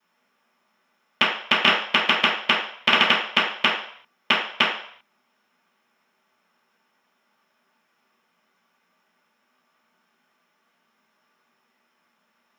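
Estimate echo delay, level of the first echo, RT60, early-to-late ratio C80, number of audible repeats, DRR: no echo audible, no echo audible, 0.60 s, 8.0 dB, no echo audible, −16.5 dB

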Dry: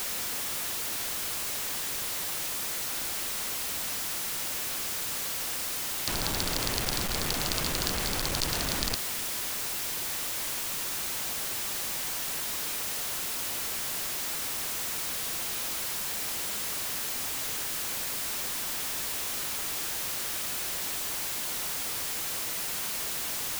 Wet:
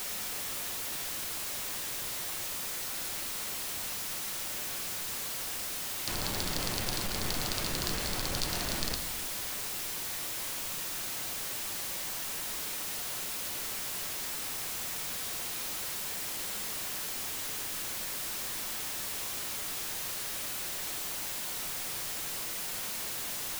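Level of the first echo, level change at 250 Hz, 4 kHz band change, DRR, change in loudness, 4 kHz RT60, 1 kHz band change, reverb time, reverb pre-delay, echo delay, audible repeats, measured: no echo audible, −3.0 dB, −3.5 dB, 6.0 dB, −3.5 dB, 0.90 s, −3.5 dB, 1.2 s, 5 ms, no echo audible, no echo audible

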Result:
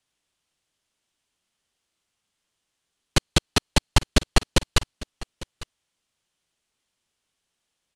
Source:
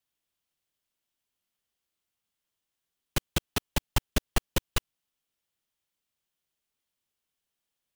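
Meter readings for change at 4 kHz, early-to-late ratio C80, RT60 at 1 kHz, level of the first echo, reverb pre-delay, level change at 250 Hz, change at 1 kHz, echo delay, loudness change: +10.0 dB, no reverb audible, no reverb audible, −19.0 dB, no reverb audible, +8.5 dB, +8.5 dB, 851 ms, +8.5 dB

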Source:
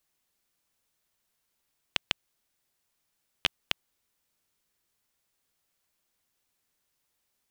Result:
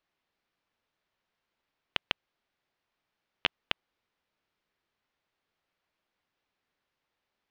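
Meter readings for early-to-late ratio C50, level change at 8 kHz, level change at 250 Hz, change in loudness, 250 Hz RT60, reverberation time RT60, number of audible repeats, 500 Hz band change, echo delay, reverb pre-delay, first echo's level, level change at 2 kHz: no reverb audible, below −10 dB, +0.5 dB, −1.0 dB, no reverb audible, no reverb audible, no echo audible, +1.5 dB, no echo audible, no reverb audible, no echo audible, 0.0 dB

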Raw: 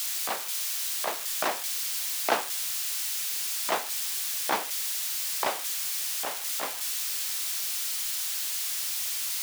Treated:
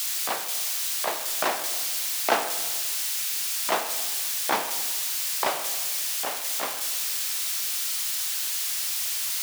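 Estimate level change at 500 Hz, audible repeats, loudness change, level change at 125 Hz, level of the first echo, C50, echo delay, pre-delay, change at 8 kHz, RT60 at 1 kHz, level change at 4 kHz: +3.5 dB, no echo audible, +3.0 dB, can't be measured, no echo audible, 9.5 dB, no echo audible, 19 ms, +2.5 dB, 1.3 s, +3.0 dB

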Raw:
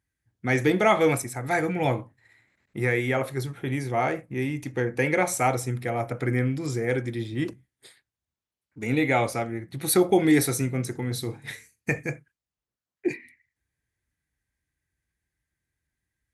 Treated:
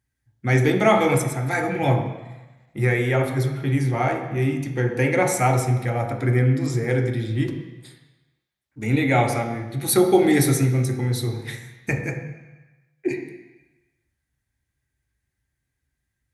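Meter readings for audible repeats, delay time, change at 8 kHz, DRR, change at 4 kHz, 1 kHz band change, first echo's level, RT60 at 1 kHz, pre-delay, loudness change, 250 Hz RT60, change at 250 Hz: no echo audible, no echo audible, +2.5 dB, 2.0 dB, +3.0 dB, +3.5 dB, no echo audible, 1.2 s, 3 ms, +4.0 dB, 1.0 s, +3.5 dB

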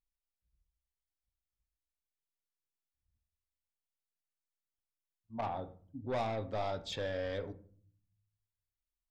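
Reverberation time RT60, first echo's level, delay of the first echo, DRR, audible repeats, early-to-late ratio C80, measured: 0.50 s, no echo audible, no echo audible, 10.0 dB, no echo audible, 21.0 dB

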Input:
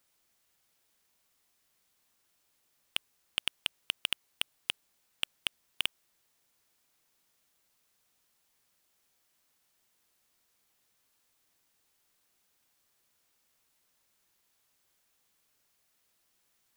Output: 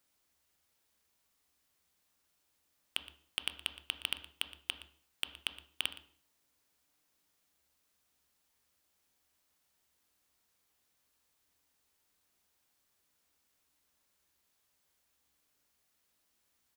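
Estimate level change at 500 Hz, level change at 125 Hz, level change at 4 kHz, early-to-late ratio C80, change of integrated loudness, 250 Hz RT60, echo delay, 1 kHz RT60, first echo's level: −2.5 dB, −0.5 dB, −3.5 dB, 13.0 dB, −3.5 dB, 0.60 s, 118 ms, 0.45 s, −17.0 dB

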